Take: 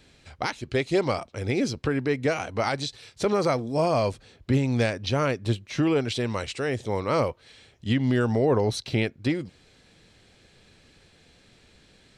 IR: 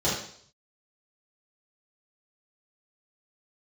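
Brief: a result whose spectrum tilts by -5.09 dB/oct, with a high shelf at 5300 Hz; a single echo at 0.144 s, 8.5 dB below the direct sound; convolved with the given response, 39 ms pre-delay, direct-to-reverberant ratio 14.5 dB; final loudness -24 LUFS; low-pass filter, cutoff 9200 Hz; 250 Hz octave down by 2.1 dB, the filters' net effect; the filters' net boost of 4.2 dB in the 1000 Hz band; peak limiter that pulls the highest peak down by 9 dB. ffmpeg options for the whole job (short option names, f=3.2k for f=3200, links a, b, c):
-filter_complex "[0:a]lowpass=9.2k,equalizer=f=250:t=o:g=-3,equalizer=f=1k:t=o:g=6,highshelf=f=5.3k:g=-4,alimiter=limit=-19dB:level=0:latency=1,aecho=1:1:144:0.376,asplit=2[a][b];[1:a]atrim=start_sample=2205,adelay=39[c];[b][c]afir=irnorm=-1:irlink=0,volume=-27dB[d];[a][d]amix=inputs=2:normalize=0,volume=5dB"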